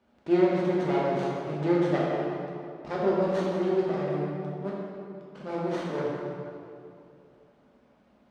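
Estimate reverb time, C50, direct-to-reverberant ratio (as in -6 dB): 2.6 s, -2.0 dB, -5.5 dB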